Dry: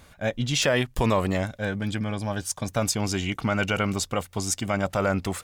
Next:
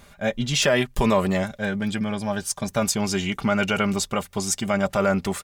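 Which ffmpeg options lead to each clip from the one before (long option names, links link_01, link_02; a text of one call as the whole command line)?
ffmpeg -i in.wav -af "aecho=1:1:5:0.52,volume=1.5dB" out.wav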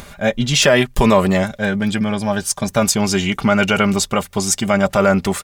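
ffmpeg -i in.wav -af "acompressor=mode=upward:threshold=-38dB:ratio=2.5,volume=7dB" out.wav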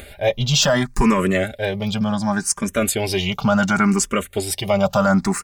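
ffmpeg -i in.wav -filter_complex "[0:a]apsyclip=8dB,asplit=2[link_01][link_02];[link_02]afreqshift=0.69[link_03];[link_01][link_03]amix=inputs=2:normalize=1,volume=-7dB" out.wav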